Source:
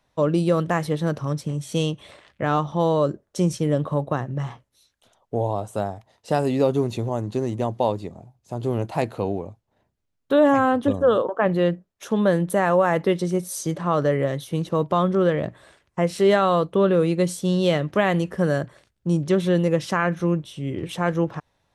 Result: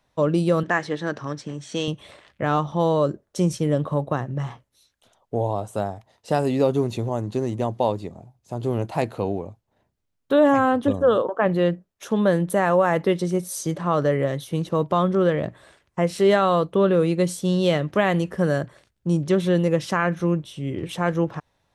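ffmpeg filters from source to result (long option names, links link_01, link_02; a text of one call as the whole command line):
ffmpeg -i in.wav -filter_complex "[0:a]asettb=1/sr,asplit=3[link_01][link_02][link_03];[link_01]atrim=end=0.634[link_04];[link_02]atrim=start=0.63:end=1.88,asetpts=PTS-STARTPTS,afade=type=in:duration=0.004:curve=qsin,afade=type=out:start_time=1.246:duration=0.004:curve=qsin,highpass=150,equalizer=frequency=160:width_type=q:width=4:gain=-8,equalizer=frequency=530:width_type=q:width=4:gain=-4,equalizer=frequency=1700:width_type=q:width=4:gain=8,lowpass=frequency=7200:width=0.5412,lowpass=frequency=7200:width=1.3066[link_05];[link_03]atrim=start=1.876[link_06];[link_04][link_05]acrossfade=duration=0.004:curve1=hsin:curve2=qsin[link_07];[link_07][link_06]acrossfade=duration=0.004:curve1=qsin:curve2=hsin" out.wav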